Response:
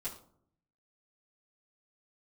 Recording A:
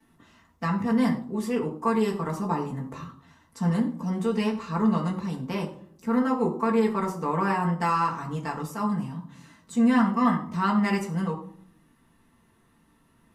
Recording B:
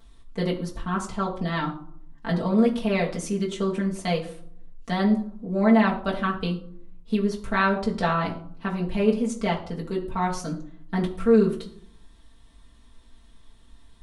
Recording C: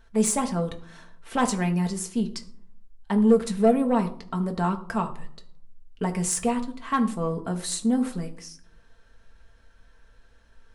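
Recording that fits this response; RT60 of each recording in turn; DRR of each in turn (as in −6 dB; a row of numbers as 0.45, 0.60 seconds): A; 0.60, 0.60, 0.60 seconds; −14.0, −5.0, 3.0 decibels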